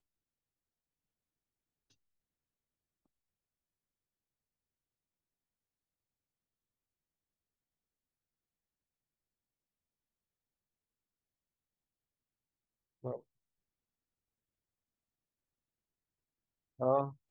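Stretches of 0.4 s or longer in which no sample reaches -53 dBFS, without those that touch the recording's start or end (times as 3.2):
13.2–16.79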